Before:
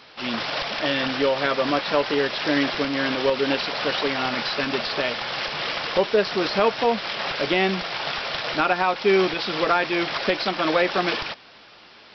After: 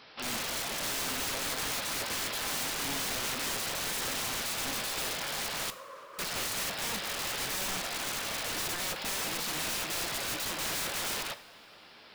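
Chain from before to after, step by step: wrapped overs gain 23 dB; 5.7–6.19 double band-pass 770 Hz, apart 1 oct; two-slope reverb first 0.57 s, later 3.2 s, from -18 dB, DRR 11.5 dB; gain -6 dB

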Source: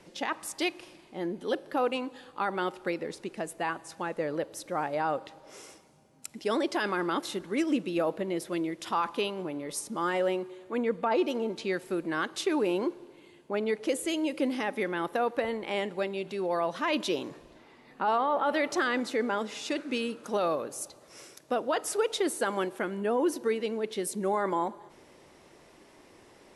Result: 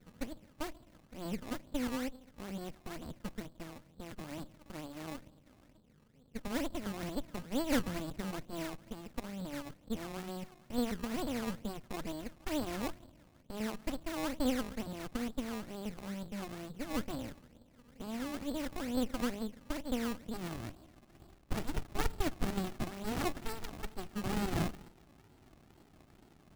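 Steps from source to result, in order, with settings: low-pass sweep 250 Hz -> 1100 Hz, 19.96–23.66; decimation with a swept rate 21×, swing 100% 2.2 Hz; running maximum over 65 samples; gain -3 dB

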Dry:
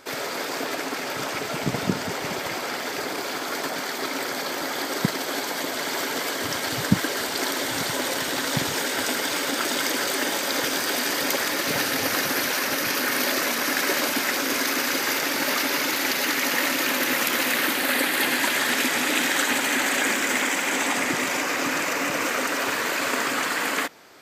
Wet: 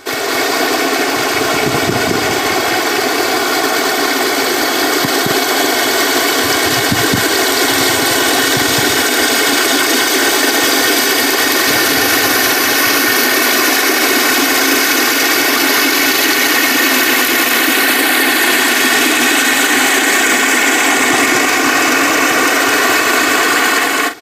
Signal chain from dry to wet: comb 2.7 ms, depth 62%; on a send: loudspeakers at several distances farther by 74 m -1 dB, 89 m -10 dB; on the sum: maximiser +12 dB; gain -1 dB

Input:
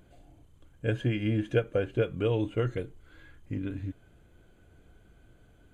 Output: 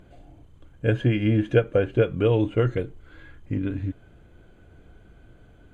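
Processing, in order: LPF 3200 Hz 6 dB/oct; gain +7 dB

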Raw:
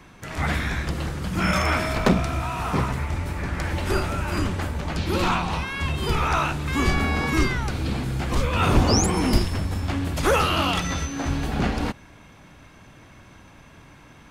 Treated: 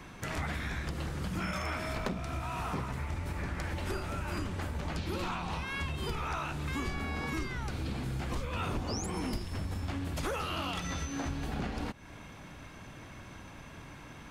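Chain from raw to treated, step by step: compressor, threshold -33 dBFS, peak gain reduction 19 dB

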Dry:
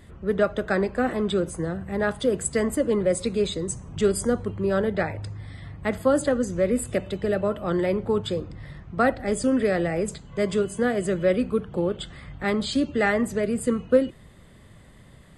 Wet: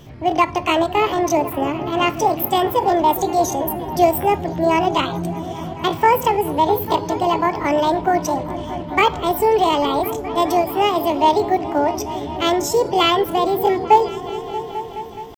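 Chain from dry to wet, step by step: pitch shift +9 st; repeats that get brighter 0.211 s, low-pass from 200 Hz, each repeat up 1 oct, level -6 dB; gain +6 dB

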